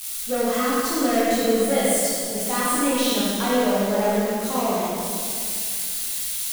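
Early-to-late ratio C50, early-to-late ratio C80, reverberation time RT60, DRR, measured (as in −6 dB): −4.0 dB, −2.0 dB, 2.3 s, −8.5 dB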